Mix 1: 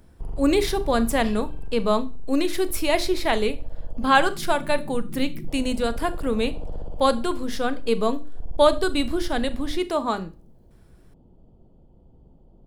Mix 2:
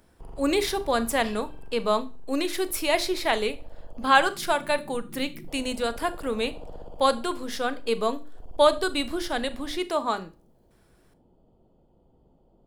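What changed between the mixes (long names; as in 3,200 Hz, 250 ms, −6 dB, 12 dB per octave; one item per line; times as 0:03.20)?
first sound: send on
master: add low-shelf EQ 260 Hz −12 dB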